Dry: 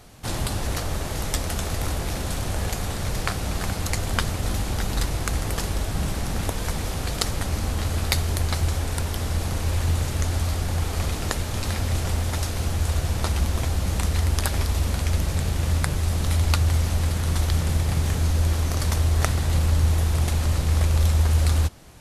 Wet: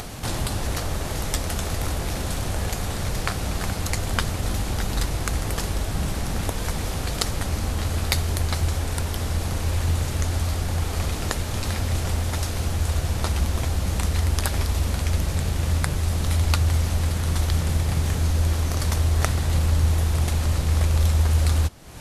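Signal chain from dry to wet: upward compressor, threshold -23 dBFS

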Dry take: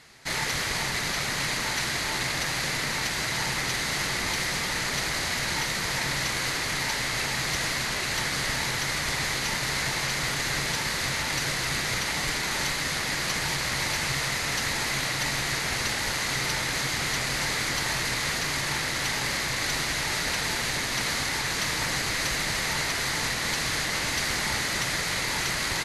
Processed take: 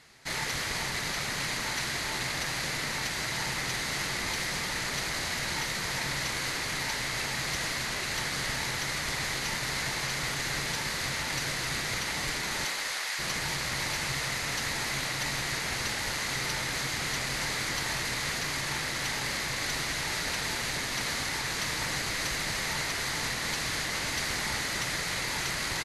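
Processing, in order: 12.64–13.18 s: high-pass 310 Hz -> 970 Hz 12 dB/octave; on a send: delay 271 ms -15.5 dB; on the sum: trim -4 dB

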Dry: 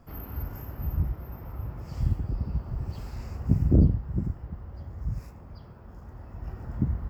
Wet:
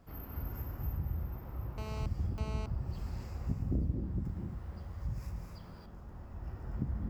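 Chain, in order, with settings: compression, threshold -25 dBFS, peak gain reduction 11.5 dB; added noise brown -55 dBFS; gated-style reverb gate 290 ms rising, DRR 4 dB; 1.78–2.66 s: mobile phone buzz -39 dBFS; 4.25–5.86 s: tape noise reduction on one side only encoder only; trim -6 dB

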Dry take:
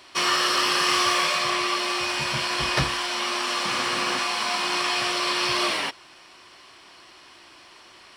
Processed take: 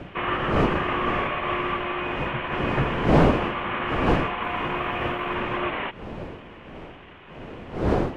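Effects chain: CVSD coder 16 kbps; wind noise 480 Hz -29 dBFS; 4.42–5.35 s: small samples zeroed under -54.5 dBFS; trim +1.5 dB

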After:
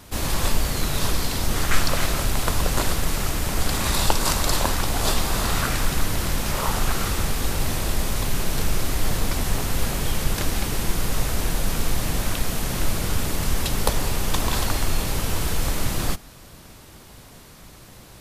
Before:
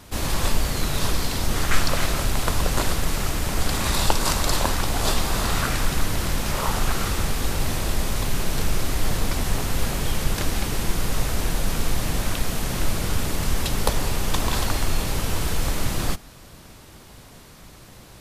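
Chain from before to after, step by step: treble shelf 11 kHz +4 dB

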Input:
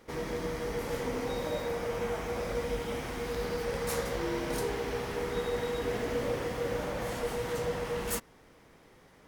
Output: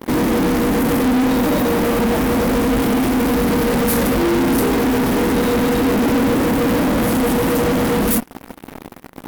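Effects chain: FFT filter 140 Hz 0 dB, 260 Hz +15 dB, 430 Hz -1 dB, 6.8 kHz -7 dB, 13 kHz +7 dB; in parallel at -3.5 dB: fuzz box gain 47 dB, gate -49 dBFS

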